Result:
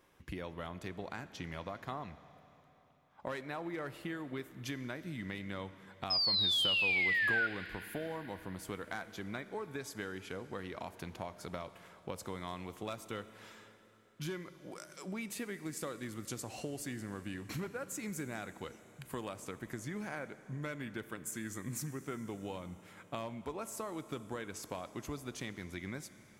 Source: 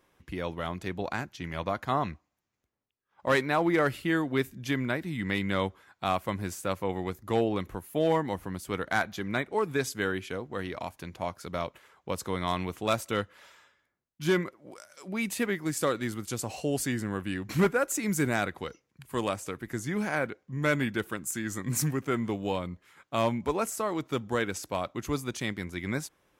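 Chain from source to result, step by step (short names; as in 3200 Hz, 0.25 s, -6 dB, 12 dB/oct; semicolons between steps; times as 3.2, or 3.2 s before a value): compressor 6:1, threshold -39 dBFS, peak gain reduction 19 dB; painted sound fall, 6.1–7.47, 1400–5200 Hz -31 dBFS; Schroeder reverb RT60 3.9 s, combs from 28 ms, DRR 13 dB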